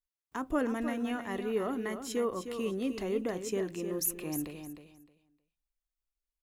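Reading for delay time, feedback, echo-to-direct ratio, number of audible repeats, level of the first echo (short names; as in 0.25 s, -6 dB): 0.309 s, 20%, -9.0 dB, 2, -9.0 dB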